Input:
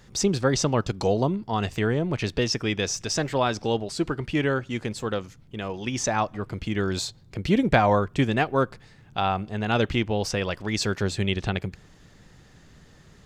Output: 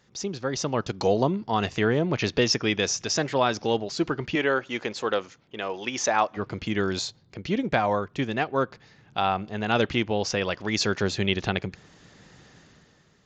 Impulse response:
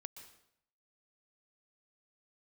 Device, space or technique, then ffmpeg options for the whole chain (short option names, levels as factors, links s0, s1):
Bluetooth headset: -filter_complex "[0:a]asettb=1/sr,asplit=3[s0][s1][s2];[s0]atrim=end=4.354[s3];[s1]atrim=start=4.35:end=6.37,asetpts=PTS-STARTPTS,afade=t=in:d=0.004:c=qsin,afade=t=out:st=2.016:d=0.004:c=qsin,bass=f=250:g=-13,treble=f=4000:g=-3[s4];[s2]atrim=start=6.366[s5];[s3][s4]acrossfade=d=0.004:c1=hsin:c2=qsin[s6];[s6][s5]acrossfade=d=0.004:c1=qsin:c2=hsin,highpass=f=180:p=1,dynaudnorm=f=120:g=13:m=5.31,aresample=16000,aresample=44100,volume=0.422" -ar 16000 -c:a sbc -b:a 64k